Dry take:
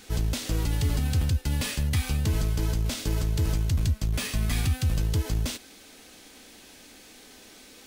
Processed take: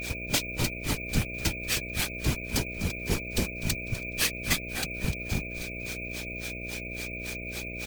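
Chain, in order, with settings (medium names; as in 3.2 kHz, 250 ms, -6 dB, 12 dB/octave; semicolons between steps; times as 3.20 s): tilt EQ +2 dB/octave; in parallel at +0.5 dB: compression, threshold -35 dBFS, peak gain reduction 11 dB; on the sum: granulator 150 ms, grains 3.6 per s, spray 15 ms, pitch spread up and down by 0 st; whistle 2.4 kHz -40 dBFS; whisper effect; mains buzz 60 Hz, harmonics 11, -44 dBFS -3 dB/octave; on a send: frequency-shifting echo 250 ms, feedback 39%, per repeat -83 Hz, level -15 dB; on the sum: careless resampling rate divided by 2×, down filtered, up hold; trim +3.5 dB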